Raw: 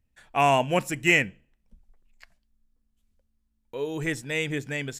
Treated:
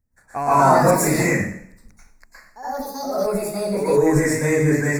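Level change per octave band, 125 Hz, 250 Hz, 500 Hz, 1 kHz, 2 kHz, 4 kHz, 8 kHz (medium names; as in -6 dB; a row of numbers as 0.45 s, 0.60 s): +11.0 dB, +11.0 dB, +10.5 dB, +8.5 dB, +1.5 dB, -3.0 dB, +12.0 dB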